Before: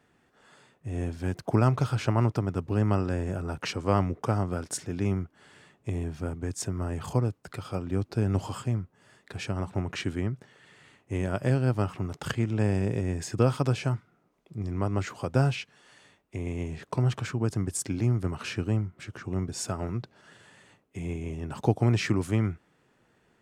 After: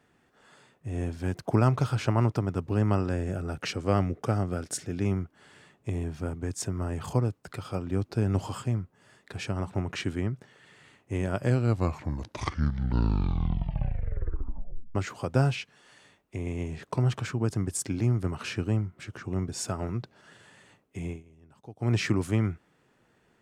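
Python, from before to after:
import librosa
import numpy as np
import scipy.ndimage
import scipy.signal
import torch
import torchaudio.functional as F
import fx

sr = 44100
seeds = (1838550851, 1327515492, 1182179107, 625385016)

y = fx.peak_eq(x, sr, hz=980.0, db=-8.0, octaves=0.35, at=(3.16, 5.01))
y = fx.edit(y, sr, fx.tape_stop(start_s=11.37, length_s=3.58),
    fx.fade_down_up(start_s=21.06, length_s=0.88, db=-21.5, fade_s=0.17), tone=tone)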